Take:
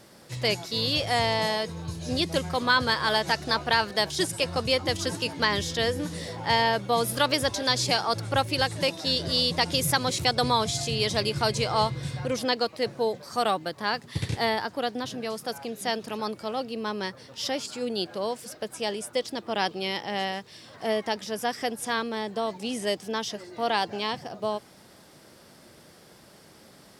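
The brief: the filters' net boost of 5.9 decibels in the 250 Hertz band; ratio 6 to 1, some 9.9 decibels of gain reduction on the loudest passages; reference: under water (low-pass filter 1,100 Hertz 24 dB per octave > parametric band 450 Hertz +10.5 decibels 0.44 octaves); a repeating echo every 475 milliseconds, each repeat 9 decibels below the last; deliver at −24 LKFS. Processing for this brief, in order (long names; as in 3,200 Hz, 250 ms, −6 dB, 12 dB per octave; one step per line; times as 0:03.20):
parametric band 250 Hz +6 dB
downward compressor 6 to 1, threshold −29 dBFS
low-pass filter 1,100 Hz 24 dB per octave
parametric band 450 Hz +10.5 dB 0.44 octaves
repeating echo 475 ms, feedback 35%, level −9 dB
level +6.5 dB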